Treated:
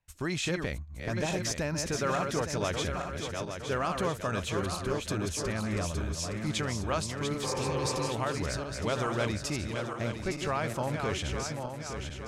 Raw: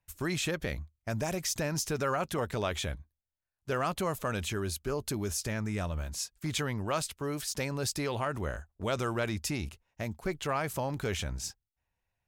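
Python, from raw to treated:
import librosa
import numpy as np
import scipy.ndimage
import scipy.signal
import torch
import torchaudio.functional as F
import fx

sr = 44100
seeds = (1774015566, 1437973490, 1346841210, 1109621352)

y = fx.reverse_delay_fb(x, sr, ms=432, feedback_pct=68, wet_db=-5.0)
y = scipy.signal.sosfilt(scipy.signal.butter(2, 8200.0, 'lowpass', fs=sr, output='sos'), y)
y = fx.spec_repair(y, sr, seeds[0], start_s=7.46, length_s=0.6, low_hz=290.0, high_hz=2500.0, source='after')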